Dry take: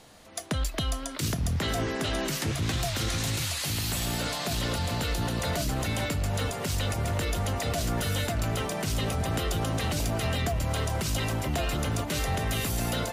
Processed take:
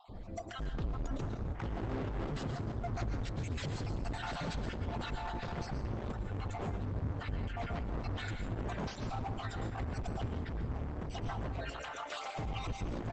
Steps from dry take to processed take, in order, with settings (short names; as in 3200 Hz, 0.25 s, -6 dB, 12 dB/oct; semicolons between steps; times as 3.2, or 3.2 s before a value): random spectral dropouts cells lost 34%; 11.58–12.39 Chebyshev high-pass 1100 Hz, order 2; spectral gate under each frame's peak -15 dB strong; 1.5–2.13 LPF 2700 Hz 12 dB/oct; tilt -4 dB/oct; limiter -16 dBFS, peak gain reduction 10.5 dB; overloaded stage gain 35.5 dB; echo 0.309 s -22.5 dB; plate-style reverb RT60 0.66 s, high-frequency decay 0.8×, pre-delay 0.1 s, DRR 5.5 dB; Opus 12 kbps 48000 Hz